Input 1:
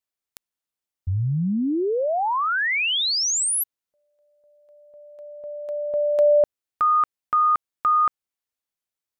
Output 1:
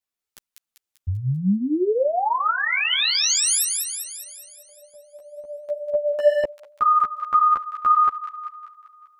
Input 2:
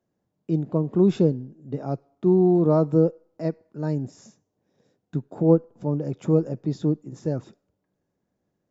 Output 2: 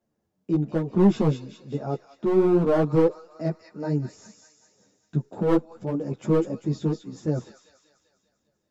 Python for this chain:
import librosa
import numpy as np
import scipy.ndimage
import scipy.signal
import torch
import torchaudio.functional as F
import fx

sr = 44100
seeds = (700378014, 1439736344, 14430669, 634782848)

y = fx.echo_wet_highpass(x, sr, ms=196, feedback_pct=55, hz=1900.0, wet_db=-4.0)
y = np.clip(10.0 ** (14.5 / 20.0) * y, -1.0, 1.0) / 10.0 ** (14.5 / 20.0)
y = fx.ensemble(y, sr)
y = y * librosa.db_to_amplitude(3.5)